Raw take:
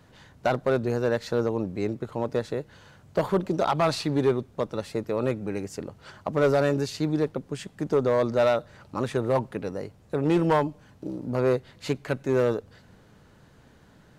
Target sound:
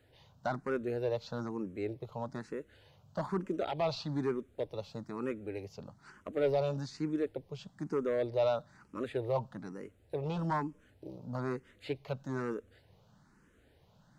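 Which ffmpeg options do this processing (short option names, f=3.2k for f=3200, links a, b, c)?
-filter_complex "[0:a]acrossover=split=5800[a][b];[b]acompressor=threshold=-58dB:ratio=4:attack=1:release=60[c];[a][c]amix=inputs=2:normalize=0,asplit=2[d][e];[e]afreqshift=1.1[f];[d][f]amix=inputs=2:normalize=1,volume=-7dB"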